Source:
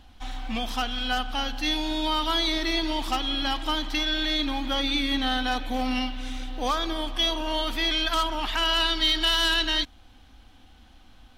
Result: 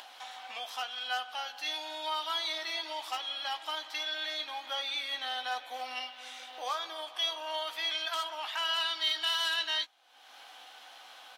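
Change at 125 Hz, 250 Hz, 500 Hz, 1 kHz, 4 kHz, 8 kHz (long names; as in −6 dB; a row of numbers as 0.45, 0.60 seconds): below −40 dB, −29.0 dB, −10.0 dB, −7.5 dB, −7.5 dB, −7.5 dB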